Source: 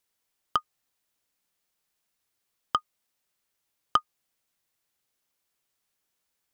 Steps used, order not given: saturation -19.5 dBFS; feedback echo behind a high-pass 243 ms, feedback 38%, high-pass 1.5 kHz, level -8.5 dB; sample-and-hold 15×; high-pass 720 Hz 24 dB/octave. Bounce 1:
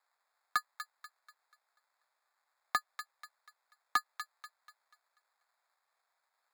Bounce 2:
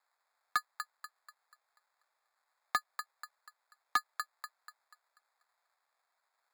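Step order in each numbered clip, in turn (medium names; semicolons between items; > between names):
sample-and-hold > high-pass > saturation > feedback echo behind a high-pass; feedback echo behind a high-pass > sample-and-hold > high-pass > saturation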